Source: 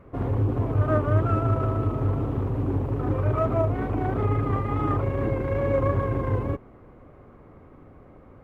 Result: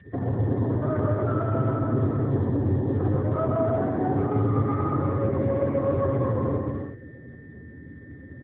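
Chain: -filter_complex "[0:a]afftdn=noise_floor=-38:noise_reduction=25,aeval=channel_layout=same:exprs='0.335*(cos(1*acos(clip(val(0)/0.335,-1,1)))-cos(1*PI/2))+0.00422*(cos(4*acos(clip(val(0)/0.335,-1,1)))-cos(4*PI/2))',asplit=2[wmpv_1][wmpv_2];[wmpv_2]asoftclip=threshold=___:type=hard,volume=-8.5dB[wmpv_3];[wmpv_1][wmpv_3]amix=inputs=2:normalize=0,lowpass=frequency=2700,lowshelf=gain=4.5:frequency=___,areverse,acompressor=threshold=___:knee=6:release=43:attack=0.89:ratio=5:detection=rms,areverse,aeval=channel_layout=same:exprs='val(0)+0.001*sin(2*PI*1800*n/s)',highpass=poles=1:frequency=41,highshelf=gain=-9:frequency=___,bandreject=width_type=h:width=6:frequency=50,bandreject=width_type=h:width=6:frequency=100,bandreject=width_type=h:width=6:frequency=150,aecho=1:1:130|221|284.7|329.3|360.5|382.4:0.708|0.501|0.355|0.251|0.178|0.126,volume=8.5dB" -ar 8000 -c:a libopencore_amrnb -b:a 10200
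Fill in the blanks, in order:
-21.5dB, 97, -30dB, 2100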